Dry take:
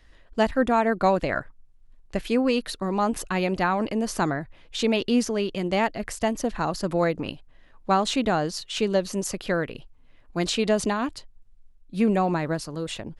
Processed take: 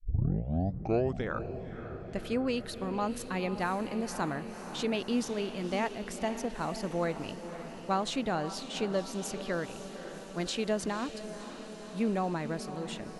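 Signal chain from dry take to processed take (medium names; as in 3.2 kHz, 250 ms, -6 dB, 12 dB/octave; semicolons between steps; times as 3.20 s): tape start-up on the opening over 1.55 s; on a send: echo that smears into a reverb 527 ms, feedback 70%, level -11 dB; on the sum: trim -8.5 dB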